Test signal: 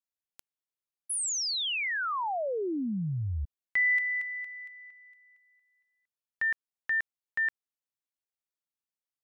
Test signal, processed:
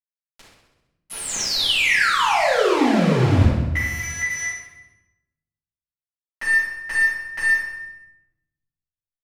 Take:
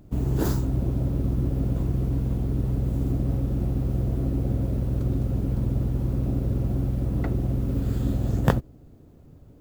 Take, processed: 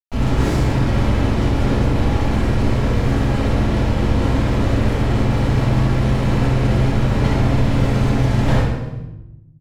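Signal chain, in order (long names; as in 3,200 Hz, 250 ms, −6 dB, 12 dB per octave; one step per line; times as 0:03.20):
dynamic equaliser 2,200 Hz, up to +4 dB, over −45 dBFS, Q 0.96
downward compressor 2 to 1, threshold −41 dBFS
bit reduction 6 bits
high-frequency loss of the air 65 metres
repeating echo 65 ms, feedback 60%, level −10 dB
rectangular room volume 330 cubic metres, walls mixed, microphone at 7.1 metres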